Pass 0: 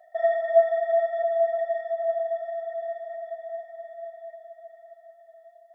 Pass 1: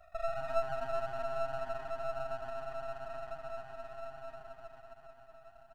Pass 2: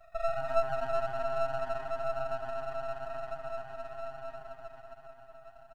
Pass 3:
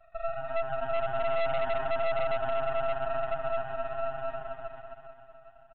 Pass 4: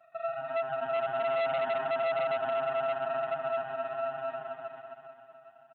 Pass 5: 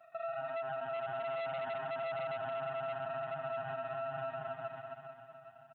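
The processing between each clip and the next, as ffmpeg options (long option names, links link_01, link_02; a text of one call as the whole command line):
ffmpeg -i in.wav -filter_complex "[0:a]acrossover=split=500[link_01][link_02];[link_02]acompressor=threshold=-38dB:ratio=4[link_03];[link_01][link_03]amix=inputs=2:normalize=0,asplit=6[link_04][link_05][link_06][link_07][link_08][link_09];[link_05]adelay=129,afreqshift=130,volume=-14dB[link_10];[link_06]adelay=258,afreqshift=260,volume=-20.2dB[link_11];[link_07]adelay=387,afreqshift=390,volume=-26.4dB[link_12];[link_08]adelay=516,afreqshift=520,volume=-32.6dB[link_13];[link_09]adelay=645,afreqshift=650,volume=-38.8dB[link_14];[link_04][link_10][link_11][link_12][link_13][link_14]amix=inputs=6:normalize=0,aeval=exprs='max(val(0),0)':channel_layout=same,volume=-1dB" out.wav
ffmpeg -i in.wav -af "aecho=1:1:7.5:0.65" out.wav
ffmpeg -i in.wav -af "dynaudnorm=framelen=200:gausssize=11:maxgain=10dB,aresample=8000,volume=19dB,asoftclip=hard,volume=-19dB,aresample=44100,volume=-2dB" out.wav
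ffmpeg -i in.wav -af "highpass=frequency=160:width=0.5412,highpass=frequency=160:width=1.3066" out.wav
ffmpeg -i in.wav -af "asubboost=boost=7.5:cutoff=130,alimiter=level_in=8.5dB:limit=-24dB:level=0:latency=1:release=112,volume=-8.5dB,volume=1dB" out.wav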